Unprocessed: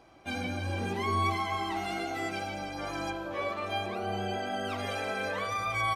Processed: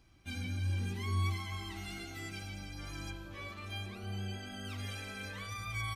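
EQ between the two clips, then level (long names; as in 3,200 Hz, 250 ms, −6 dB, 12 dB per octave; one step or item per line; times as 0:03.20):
guitar amp tone stack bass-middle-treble 6-0-2
low-shelf EQ 98 Hz +8.5 dB
high-shelf EQ 10,000 Hz +4.5 dB
+10.5 dB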